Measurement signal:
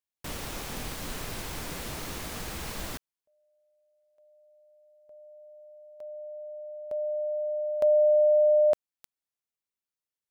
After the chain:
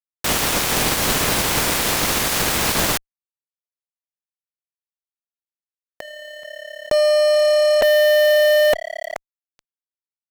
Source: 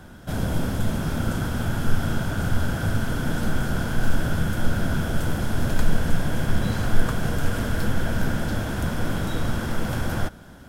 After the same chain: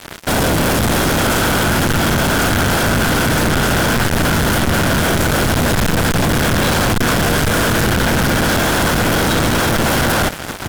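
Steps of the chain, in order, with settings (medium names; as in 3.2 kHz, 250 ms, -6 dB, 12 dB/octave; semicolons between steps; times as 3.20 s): spectral peaks clipped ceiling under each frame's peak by 14 dB; frequency-shifting echo 429 ms, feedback 42%, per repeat +35 Hz, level -21 dB; fuzz box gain 39 dB, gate -39 dBFS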